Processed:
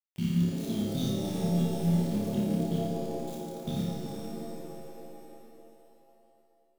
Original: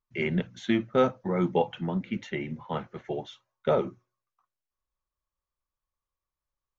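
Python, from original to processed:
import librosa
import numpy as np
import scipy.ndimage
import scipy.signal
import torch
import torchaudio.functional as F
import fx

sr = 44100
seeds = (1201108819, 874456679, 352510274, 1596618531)

y = fx.reverse_delay_fb(x, sr, ms=188, feedback_pct=40, wet_db=-10.5)
y = scipy.signal.sosfilt(scipy.signal.ellip(3, 1.0, 40, [210.0, 4100.0], 'bandstop', fs=sr, output='sos'), y)
y = fx.peak_eq(y, sr, hz=600.0, db=3.0, octaves=1.7)
y = fx.level_steps(y, sr, step_db=19)
y = np.where(np.abs(y) >= 10.0 ** (-51.0 / 20.0), y, 0.0)
y = fx.high_shelf(y, sr, hz=5900.0, db=9.0)
y = fx.room_flutter(y, sr, wall_m=5.0, rt60_s=0.69)
y = fx.rev_shimmer(y, sr, seeds[0], rt60_s=2.9, semitones=7, shimmer_db=-2, drr_db=2.5)
y = y * librosa.db_to_amplitude(6.0)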